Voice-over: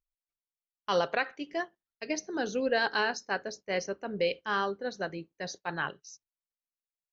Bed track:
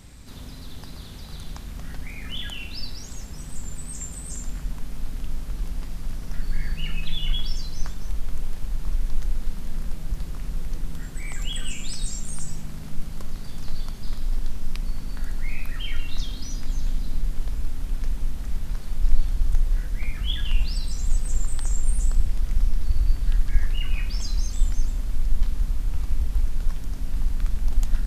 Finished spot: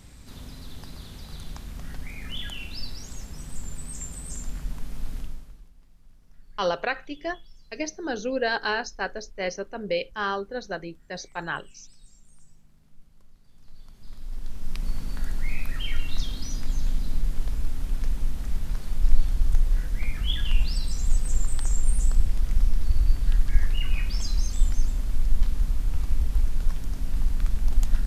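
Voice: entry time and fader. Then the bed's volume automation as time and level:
5.70 s, +2.0 dB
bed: 0:05.19 −2 dB
0:05.72 −24.5 dB
0:13.44 −24.5 dB
0:14.88 0 dB

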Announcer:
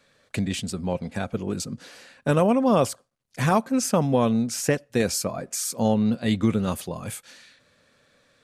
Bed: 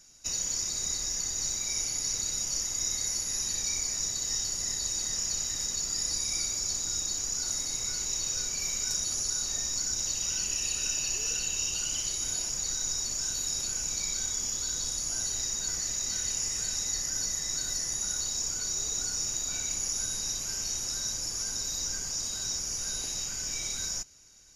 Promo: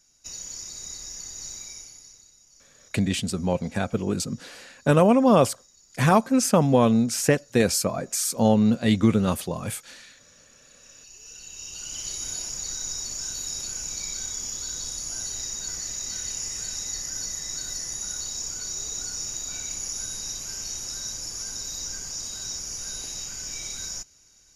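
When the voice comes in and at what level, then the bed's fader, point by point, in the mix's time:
2.60 s, +2.5 dB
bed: 0:01.60 −6 dB
0:02.37 −25 dB
0:10.62 −25 dB
0:12.11 −0.5 dB

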